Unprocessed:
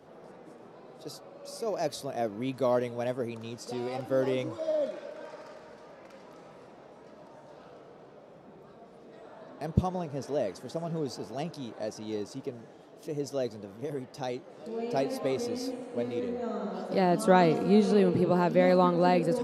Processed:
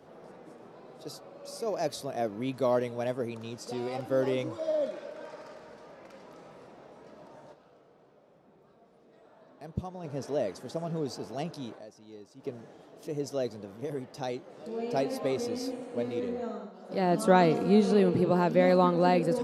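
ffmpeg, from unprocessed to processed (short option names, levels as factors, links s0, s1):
-filter_complex "[0:a]asplit=7[s0][s1][s2][s3][s4][s5][s6];[s0]atrim=end=7.67,asetpts=PTS-STARTPTS,afade=t=out:st=7.52:d=0.15:c=exp:silence=0.354813[s7];[s1]atrim=start=7.67:end=9.9,asetpts=PTS-STARTPTS,volume=0.355[s8];[s2]atrim=start=9.9:end=11.86,asetpts=PTS-STARTPTS,afade=t=in:d=0.15:c=exp:silence=0.354813,afade=t=out:st=1.84:d=0.12:c=qua:silence=0.211349[s9];[s3]atrim=start=11.86:end=12.35,asetpts=PTS-STARTPTS,volume=0.211[s10];[s4]atrim=start=12.35:end=16.72,asetpts=PTS-STARTPTS,afade=t=in:d=0.12:c=qua:silence=0.211349,afade=t=out:st=4.04:d=0.33:silence=0.211349[s11];[s5]atrim=start=16.72:end=16.8,asetpts=PTS-STARTPTS,volume=0.211[s12];[s6]atrim=start=16.8,asetpts=PTS-STARTPTS,afade=t=in:d=0.33:silence=0.211349[s13];[s7][s8][s9][s10][s11][s12][s13]concat=n=7:v=0:a=1"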